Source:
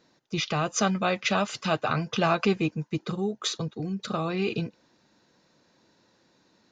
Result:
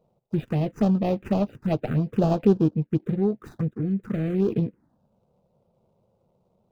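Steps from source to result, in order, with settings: median filter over 41 samples; high shelf 2200 Hz -11.5 dB; envelope phaser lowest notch 290 Hz, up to 2100 Hz, full sweep at -24 dBFS; gain +7 dB

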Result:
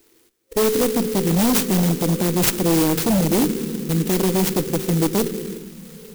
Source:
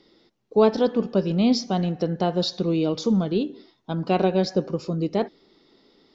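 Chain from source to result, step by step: minimum comb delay 0.4 ms; low shelf 440 Hz -4 dB; AGC gain up to 12 dB; reverb RT60 5.5 s, pre-delay 26 ms, DRR 11.5 dB; envelope phaser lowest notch 160 Hz, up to 1200 Hz, full sweep at -23 dBFS; FFT band-reject 530–1900 Hz; limiter -10.5 dBFS, peak gain reduction 6.5 dB; wavefolder -15 dBFS; tone controls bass -2 dB, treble +7 dB; clock jitter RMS 0.12 ms; gain +3.5 dB

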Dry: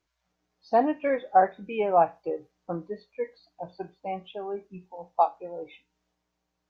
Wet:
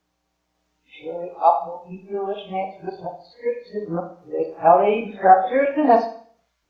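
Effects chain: whole clip reversed; Schroeder reverb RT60 0.49 s, combs from 27 ms, DRR 5.5 dB; gain +6.5 dB

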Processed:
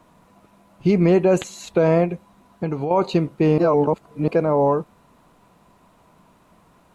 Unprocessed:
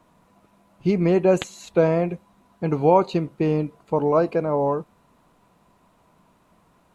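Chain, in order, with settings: limiter -13 dBFS, peak gain reduction 8.5 dB; 2.04–2.91 compressor, threshold -26 dBFS, peak gain reduction 8 dB; 3.58–4.28 reverse; gain +4.5 dB

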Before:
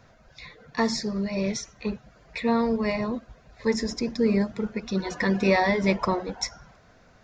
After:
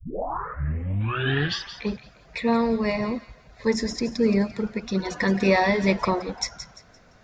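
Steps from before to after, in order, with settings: tape start at the beginning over 1.90 s; spectral gain 1.01–1.82, 710–3900 Hz +10 dB; thin delay 0.172 s, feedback 32%, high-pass 1800 Hz, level -10.5 dB; gain +1.5 dB

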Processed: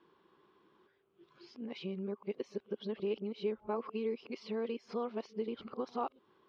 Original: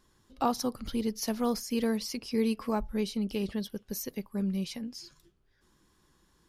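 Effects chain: whole clip reversed; compressor 4:1, threshold -36 dBFS, peak gain reduction 12 dB; speaker cabinet 250–3100 Hz, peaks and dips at 260 Hz -4 dB, 400 Hz +8 dB, 1100 Hz +3 dB, 1800 Hz -7 dB; gain +2 dB

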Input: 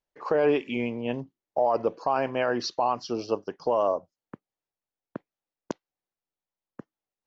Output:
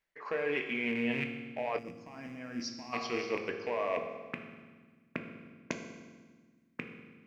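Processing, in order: rattling part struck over -42 dBFS, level -30 dBFS; bell 2000 Hz +15 dB 0.86 oct; reverse; compressor 6:1, threshold -32 dBFS, peak gain reduction 14.5 dB; reverse; bell 790 Hz -3 dB 0.32 oct; notches 60/120 Hz; on a send at -3 dB: reverb RT60 1.5 s, pre-delay 3 ms; on the sum: spectral gain 1.78–2.93, 330–4700 Hz -15 dB

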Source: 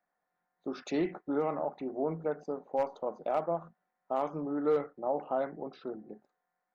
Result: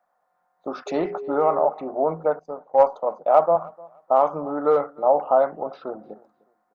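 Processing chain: band shelf 830 Hz +11 dB; 0.86–1.67 whine 410 Hz -33 dBFS; on a send: feedback echo 0.303 s, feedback 23%, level -24 dB; 2.39–3.56 on the sum: three-band expander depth 70%; gain +3.5 dB

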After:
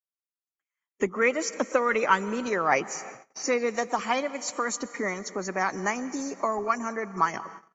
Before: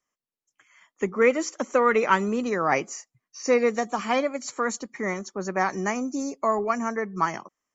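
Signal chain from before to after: harmonic-percussive split harmonic -7 dB; pre-echo 36 ms -24 dB; plate-style reverb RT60 2.4 s, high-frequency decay 0.85×, pre-delay 0.11 s, DRR 17 dB; gate -46 dBFS, range -36 dB; in parallel at -1.5 dB: compressor, threshold -38 dBFS, peak gain reduction 20 dB

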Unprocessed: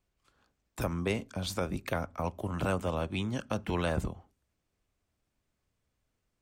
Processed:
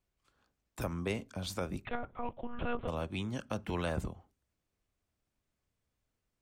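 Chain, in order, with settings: 1.85–2.88 monotone LPC vocoder at 8 kHz 240 Hz; gain -4 dB

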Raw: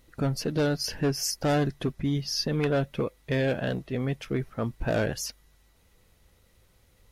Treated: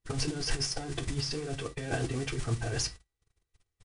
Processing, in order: comb 2.6 ms, depth 71%; negative-ratio compressor -34 dBFS, ratio -1; shoebox room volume 55 m³, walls mixed, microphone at 0.32 m; modulation noise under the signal 10 dB; Chebyshev low-pass 10000 Hz, order 10; bell 110 Hz +8 dB 0.33 oct; gate -42 dBFS, range -34 dB; time stretch by phase-locked vocoder 0.54×

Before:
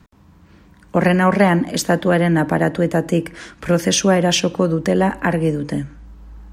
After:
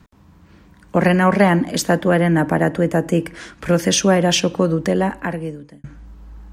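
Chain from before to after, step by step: 1.97–3.18 bell 4000 Hz -6.5 dB 0.51 oct; 4.77–5.84 fade out

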